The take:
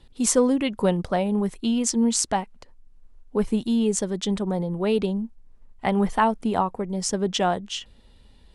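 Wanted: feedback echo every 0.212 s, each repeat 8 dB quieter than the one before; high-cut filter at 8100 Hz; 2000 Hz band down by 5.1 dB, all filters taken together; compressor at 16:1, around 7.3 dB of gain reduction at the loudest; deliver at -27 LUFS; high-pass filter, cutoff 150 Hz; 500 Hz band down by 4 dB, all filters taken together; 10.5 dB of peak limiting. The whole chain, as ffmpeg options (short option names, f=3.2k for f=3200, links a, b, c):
-af "highpass=150,lowpass=8.1k,equalizer=f=500:t=o:g=-4.5,equalizer=f=2k:t=o:g=-6.5,acompressor=threshold=-26dB:ratio=16,alimiter=limit=-23dB:level=0:latency=1,aecho=1:1:212|424|636|848|1060:0.398|0.159|0.0637|0.0255|0.0102,volume=5.5dB"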